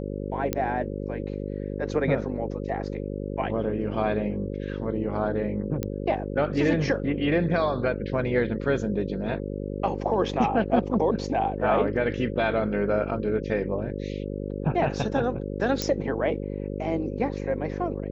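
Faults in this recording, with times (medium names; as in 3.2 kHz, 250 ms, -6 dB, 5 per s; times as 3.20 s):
buzz 50 Hz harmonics 11 -32 dBFS
0.53 s: pop -10 dBFS
5.83 s: pop -15 dBFS
15.82 s: pop -11 dBFS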